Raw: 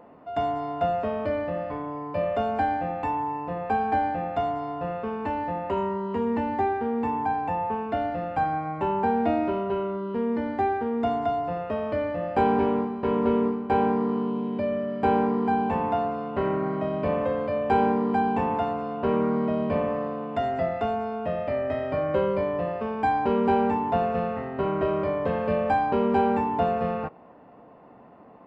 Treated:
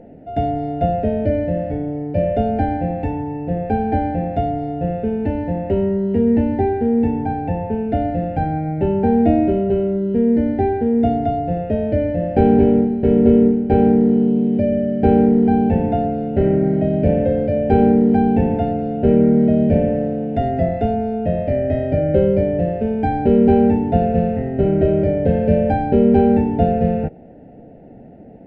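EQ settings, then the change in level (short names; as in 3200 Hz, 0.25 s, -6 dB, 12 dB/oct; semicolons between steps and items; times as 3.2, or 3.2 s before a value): Butterworth band-stop 1100 Hz, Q 1.2; tilt -3.5 dB/oct; +5.0 dB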